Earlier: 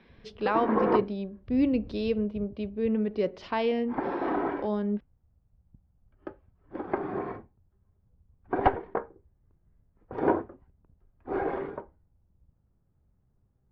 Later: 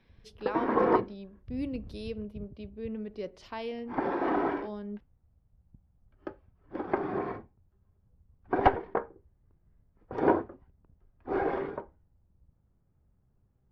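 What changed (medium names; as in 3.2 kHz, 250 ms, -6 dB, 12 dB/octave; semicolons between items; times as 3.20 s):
speech -10.5 dB; master: remove distance through air 160 m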